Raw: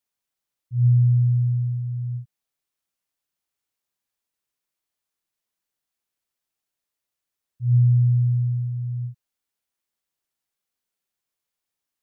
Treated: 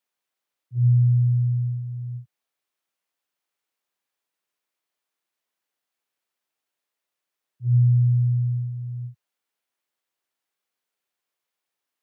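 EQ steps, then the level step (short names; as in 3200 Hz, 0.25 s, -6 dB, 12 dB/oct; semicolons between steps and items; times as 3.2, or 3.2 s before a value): HPF 90 Hz 24 dB/oct; dynamic EQ 120 Hz, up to +5 dB, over -28 dBFS, Q 1.2; tone controls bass -10 dB, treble -6 dB; +4.0 dB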